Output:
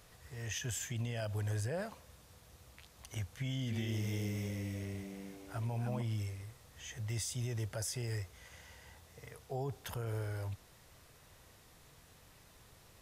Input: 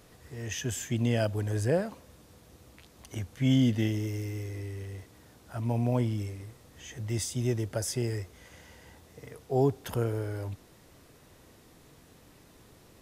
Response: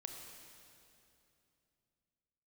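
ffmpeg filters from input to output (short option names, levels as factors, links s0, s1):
-filter_complex "[0:a]equalizer=f=290:t=o:w=1.5:g=-11,alimiter=level_in=1.58:limit=0.0631:level=0:latency=1:release=56,volume=0.631,asettb=1/sr,asplit=3[s0][s1][s2];[s0]atrim=end=3.374[s3];[s1]atrim=start=3.37:end=6.02,asetpts=PTS-STARTPTS,afade=t=in:d=0.004:c=qsin,afade=t=out:st=2.646:d=0.004:c=qsin,asplit=7[s4][s5][s6][s7][s8][s9][s10];[s5]adelay=302,afreqshift=96,volume=0.501[s11];[s6]adelay=604,afreqshift=192,volume=0.232[s12];[s7]adelay=906,afreqshift=288,volume=0.106[s13];[s8]adelay=1208,afreqshift=384,volume=0.049[s14];[s9]adelay=1510,afreqshift=480,volume=0.0224[s15];[s10]adelay=1812,afreqshift=576,volume=0.0104[s16];[s4][s11][s12][s13][s14][s15][s16]amix=inputs=7:normalize=0,atrim=end_sample=116865[s17];[s2]atrim=start=6.016[s18];[s3][s17]acrossfade=d=0.004:c1=hsin:c2=qsin[s19];[s19][s18]acrossfade=d=0.004:c1=qsin:c2=hsin,volume=0.841"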